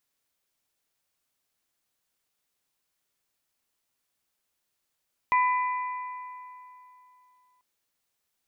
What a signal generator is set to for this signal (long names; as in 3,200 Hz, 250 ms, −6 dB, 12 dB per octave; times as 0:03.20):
struck metal bell, length 2.29 s, lowest mode 1,000 Hz, modes 3, decay 2.97 s, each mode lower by 7 dB, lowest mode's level −19 dB